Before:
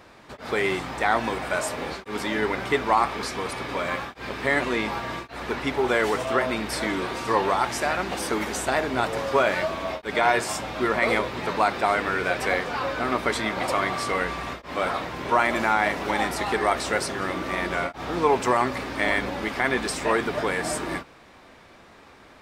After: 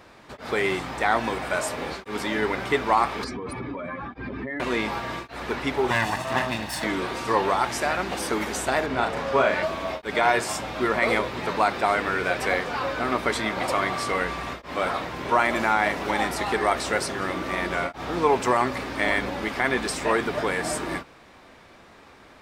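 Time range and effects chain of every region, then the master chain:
3.24–4.60 s: spectral contrast enhancement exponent 1.9 + resonant low shelf 370 Hz +6.5 dB, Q 1.5 + compression, threshold -29 dBFS
5.90–6.84 s: comb filter that takes the minimum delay 1.1 ms + high-pass 75 Hz
8.86–9.63 s: low-pass 3.9 kHz 6 dB/octave + peaking EQ 340 Hz -5.5 dB 0.24 oct + doubling 37 ms -6 dB
whole clip: none

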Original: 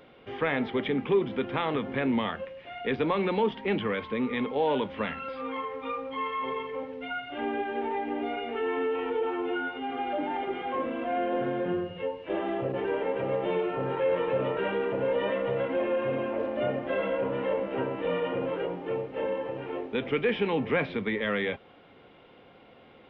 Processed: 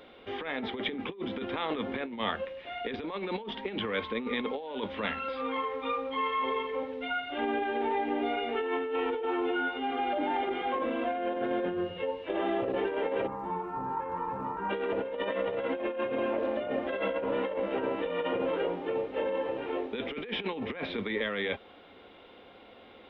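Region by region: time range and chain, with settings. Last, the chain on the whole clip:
13.26–14.69 s: FFT filter 200 Hz 0 dB, 600 Hz -20 dB, 900 Hz +4 dB, 3.2 kHz -26 dB + crackle 430 per s -65 dBFS
whole clip: peaking EQ 3.7 kHz +6.5 dB 0.27 oct; compressor with a negative ratio -30 dBFS, ratio -0.5; peaking EQ 140 Hz -14.5 dB 0.51 oct

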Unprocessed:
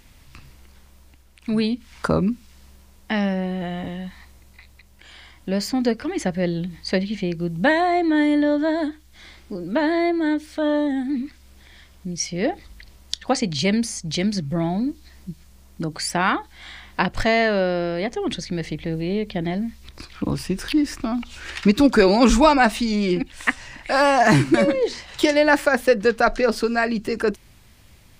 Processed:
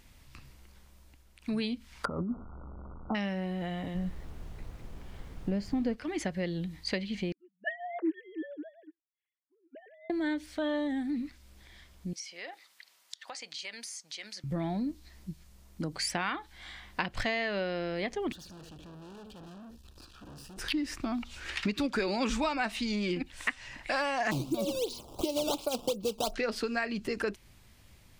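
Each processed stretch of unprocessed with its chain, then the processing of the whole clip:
2.05–3.15 s: one-bit delta coder 64 kbps, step -33.5 dBFS + brick-wall FIR low-pass 1.5 kHz + compressor with a negative ratio -22 dBFS, ratio -0.5
3.94–5.94 s: companding laws mixed up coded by A + tilt EQ -3.5 dB/octave + added noise brown -35 dBFS
7.32–10.10 s: formants replaced by sine waves + high-pass 250 Hz 24 dB/octave + upward expansion 2.5:1, over -34 dBFS
12.13–14.44 s: high-pass 1 kHz + compression 10:1, threshold -31 dBFS
18.32–20.58 s: delay 75 ms -13 dB + valve stage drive 40 dB, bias 0.65 + Butterworth band-stop 2.1 kHz, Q 2.6
24.31–26.34 s: decimation with a swept rate 12×, swing 160% 2.8 Hz + Butterworth band-stop 1.8 kHz, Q 0.78
whole clip: dynamic bell 2.7 kHz, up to +7 dB, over -36 dBFS, Q 0.75; compression 4:1, threshold -22 dBFS; trim -7 dB

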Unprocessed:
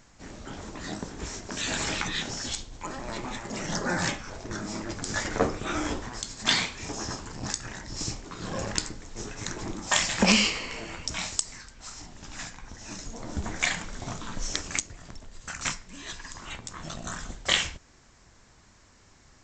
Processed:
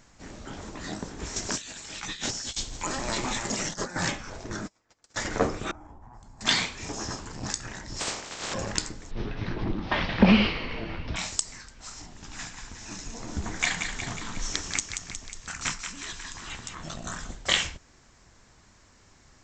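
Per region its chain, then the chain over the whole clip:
1.36–3.96 s: treble shelf 3.2 kHz +10.5 dB + compressor with a negative ratio -32 dBFS, ratio -0.5
4.66–5.17 s: spectral peaks clipped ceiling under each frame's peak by 17 dB + gate -30 dBFS, range -37 dB + comb of notches 200 Hz
5.71–6.41 s: FFT filter 100 Hz 0 dB, 500 Hz -13 dB, 840 Hz +2 dB, 1.3 kHz -11 dB, 3.6 kHz -28 dB, 9 kHz -22 dB + compression, threshold -44 dBFS
7.99–8.53 s: spectral peaks clipped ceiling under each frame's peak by 28 dB + peaking EQ 590 Hz +4 dB 2.9 oct
9.11–11.16 s: CVSD coder 32 kbps + low-pass 4 kHz 24 dB/octave + bass shelf 360 Hz +8.5 dB
12.16–16.75 s: peaking EQ 580 Hz -5.5 dB 0.32 oct + thinning echo 181 ms, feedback 65%, high-pass 960 Hz, level -6 dB
whole clip: none

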